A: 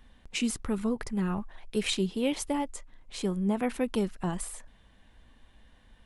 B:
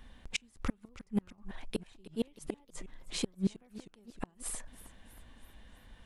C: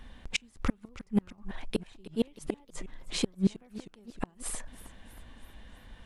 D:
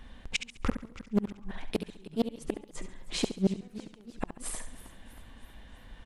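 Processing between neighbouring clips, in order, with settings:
gate with flip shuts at −22 dBFS, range −37 dB; feedback echo with a swinging delay time 318 ms, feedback 57%, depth 180 cents, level −17 dB; level +2.5 dB
high-shelf EQ 8,200 Hz −5.5 dB; level +5 dB
on a send: repeating echo 69 ms, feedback 37%, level −10 dB; on the sum: highs frequency-modulated by the lows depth 0.42 ms

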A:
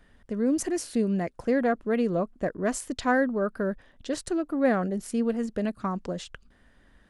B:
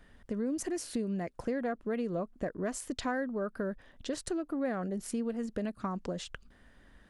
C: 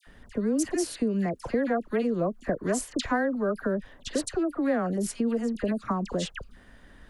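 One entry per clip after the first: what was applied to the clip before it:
downward compressor 3 to 1, threshold −33 dBFS, peak gain reduction 11.5 dB
all-pass dispersion lows, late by 68 ms, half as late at 1,500 Hz; level +7 dB

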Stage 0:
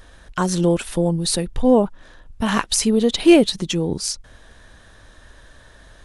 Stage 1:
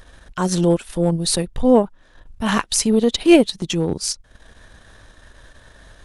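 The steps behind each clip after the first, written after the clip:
transient designer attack −6 dB, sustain −10 dB
level +2.5 dB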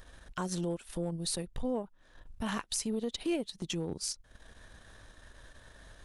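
high-shelf EQ 10,000 Hz +4 dB
downward compressor 3 to 1, threshold −26 dBFS, peak gain reduction 14.5 dB
level −8 dB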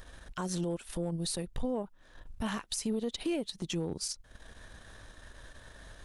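brickwall limiter −28 dBFS, peak gain reduction 9 dB
level +3 dB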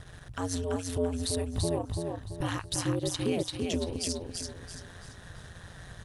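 ring modulation 88 Hz
on a send: repeating echo 336 ms, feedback 37%, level −4 dB
on the sum: level +5 dB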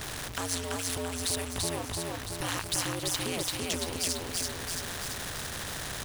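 converter with a step at zero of −43.5 dBFS
every bin compressed towards the loudest bin 2 to 1

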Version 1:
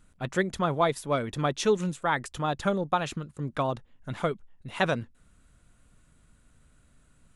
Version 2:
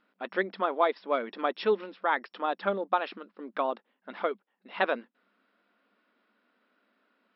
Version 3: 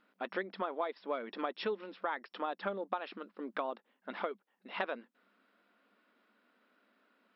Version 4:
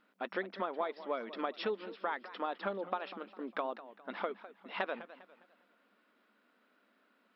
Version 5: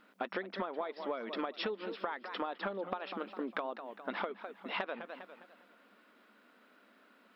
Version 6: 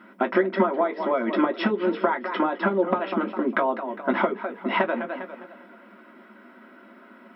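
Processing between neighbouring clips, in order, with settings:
brick-wall band-pass 190–5,500 Hz; bass and treble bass −12 dB, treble −12 dB
downward compressor 4 to 1, threshold −34 dBFS, peak gain reduction 13 dB
feedback echo with a swinging delay time 202 ms, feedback 39%, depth 185 cents, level −15 dB
downward compressor 10 to 1, threshold −41 dBFS, peak gain reduction 12 dB; level +7.5 dB
convolution reverb RT60 0.15 s, pre-delay 3 ms, DRR 1 dB; level +2 dB

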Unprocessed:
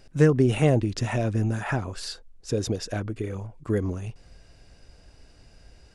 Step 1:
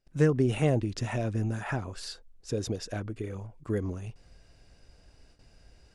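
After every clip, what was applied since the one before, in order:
noise gate with hold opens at −43 dBFS
level −5 dB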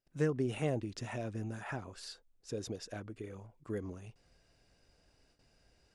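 low-shelf EQ 100 Hz −9.5 dB
level −7 dB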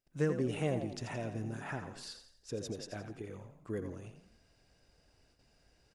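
echo with shifted repeats 85 ms, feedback 43%, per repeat +37 Hz, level −9.5 dB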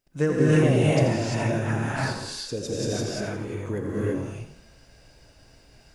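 reverb whose tail is shaped and stops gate 370 ms rising, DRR −6 dB
level +7.5 dB

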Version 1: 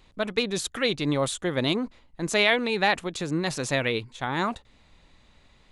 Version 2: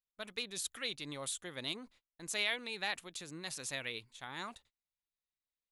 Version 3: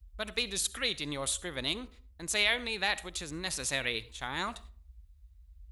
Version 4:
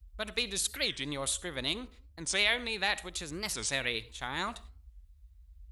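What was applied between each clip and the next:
first-order pre-emphasis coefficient 0.9; noise gate −60 dBFS, range −29 dB; parametric band 6,900 Hz −5.5 dB 1.5 octaves; level −1.5 dB
in parallel at −1.5 dB: speech leveller 2 s; on the sum: noise in a band 37–69 Hz −54 dBFS; convolution reverb RT60 0.45 s, pre-delay 25 ms, DRR 17.5 dB; level +1.5 dB
wow of a warped record 45 rpm, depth 250 cents

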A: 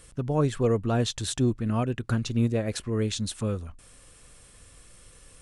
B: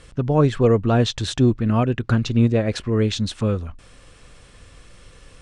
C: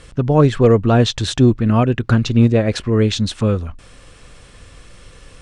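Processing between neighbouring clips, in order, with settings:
low-pass filter 4,800 Hz 12 dB per octave; level +7.5 dB
hard clipping −7.5 dBFS, distortion −37 dB; level +4.5 dB

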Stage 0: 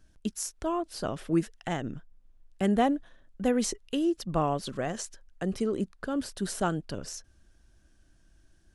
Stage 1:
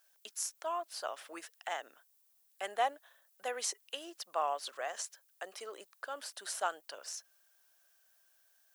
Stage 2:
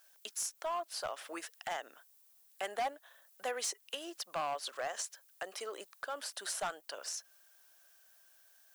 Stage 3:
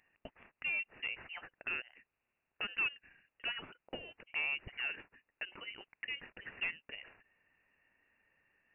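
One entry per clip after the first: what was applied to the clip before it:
high-pass filter 640 Hz 24 dB per octave; background noise violet −68 dBFS; level −2.5 dB
in parallel at +1.5 dB: downward compressor, threshold −46 dBFS, peak gain reduction 18.5 dB; on the sum: gain into a clipping stage and back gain 29 dB; level −1.5 dB
low shelf with overshoot 450 Hz −11.5 dB, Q 1.5; voice inversion scrambler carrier 3,400 Hz; level −2 dB

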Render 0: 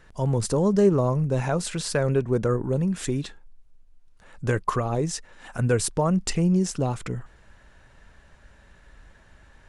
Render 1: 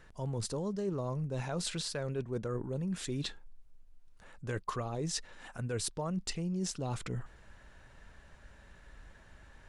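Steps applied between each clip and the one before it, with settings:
dynamic equaliser 4,000 Hz, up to +7 dB, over −49 dBFS, Q 1.4
reversed playback
downward compressor 6 to 1, threshold −30 dBFS, peak gain reduction 15 dB
reversed playback
level −3 dB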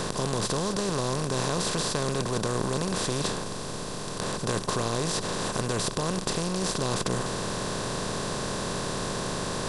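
compressor on every frequency bin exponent 0.2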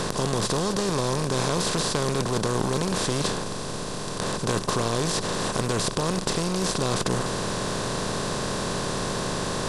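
highs frequency-modulated by the lows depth 0.16 ms
level +3 dB

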